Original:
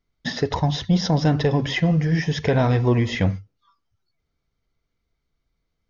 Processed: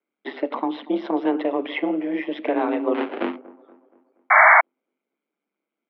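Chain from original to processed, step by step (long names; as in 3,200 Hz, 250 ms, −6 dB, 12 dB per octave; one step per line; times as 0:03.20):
notch filter 1,700 Hz, Q 7.7
0:02.94–0:03.36: sample-rate reduction 1,000 Hz, jitter 20%
ring modulation 71 Hz
on a send: delay with a low-pass on its return 237 ms, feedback 47%, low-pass 1,000 Hz, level −19.5 dB
0:04.30–0:04.61: on the sum: sound drawn into the spectrogram noise 510–2,200 Hz −13 dBFS
single-sideband voice off tune +86 Hz 180–3,000 Hz
level +1 dB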